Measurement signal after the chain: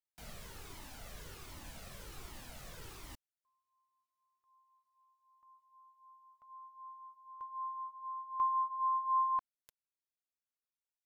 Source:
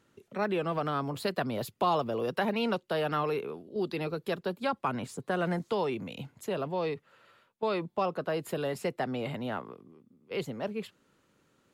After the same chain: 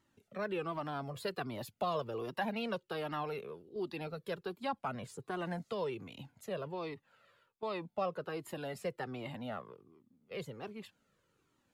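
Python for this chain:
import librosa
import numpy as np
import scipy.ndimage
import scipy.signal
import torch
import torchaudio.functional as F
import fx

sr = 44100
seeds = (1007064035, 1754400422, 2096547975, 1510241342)

y = fx.comb_cascade(x, sr, direction='falling', hz=1.3)
y = y * librosa.db_to_amplitude(-2.5)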